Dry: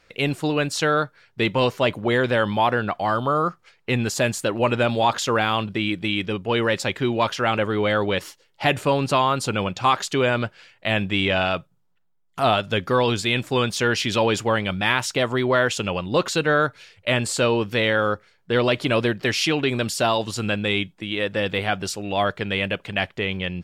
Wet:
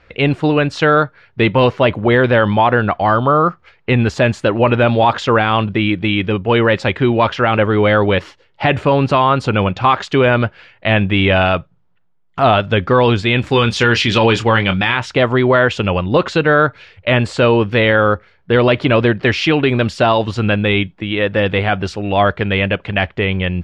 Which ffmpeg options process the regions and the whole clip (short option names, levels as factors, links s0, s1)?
-filter_complex "[0:a]asettb=1/sr,asplit=3[s0][s1][s2];[s0]atrim=end=13.414[s3];[s1]atrim=start=13.41:end=14.97,asetpts=PTS-STARTPTS,afade=t=in:d=0.004:c=qsin,afade=t=out:st=1.556:d=0.004:c=qsin,highshelf=f=2600:g=8.5,bandreject=f=640:w=9,asplit=2[s4][s5];[s5]adelay=26,volume=0.316[s6];[s4][s6]amix=inputs=2:normalize=0,atrim=end_sample=68796[s7];[s2]atrim=start=14.966[s8];[s3][s7]acrossfade=d=0.004:c1=hsin:c2=qsin[s9];[s9][s8]acrossfade=d=0.004:c1=qsin:c2=hsin,lowpass=2800,equalizer=f=70:t=o:w=0.66:g=12.5,alimiter=level_in=3.35:limit=0.891:release=50:level=0:latency=1,volume=0.794"